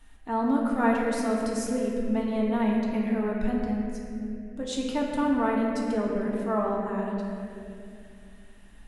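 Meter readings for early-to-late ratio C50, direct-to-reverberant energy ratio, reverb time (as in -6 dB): 0.0 dB, -3.0 dB, 2.5 s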